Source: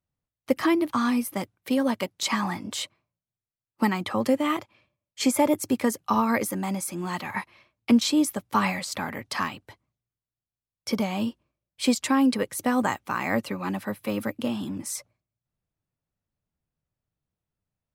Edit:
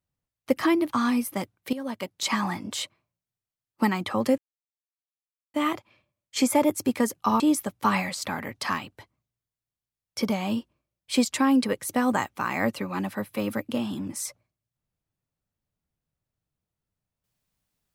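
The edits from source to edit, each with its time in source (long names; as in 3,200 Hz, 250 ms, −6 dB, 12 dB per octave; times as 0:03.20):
0:01.73–0:02.29: fade in, from −14.5 dB
0:04.38: splice in silence 1.16 s
0:06.24–0:08.10: remove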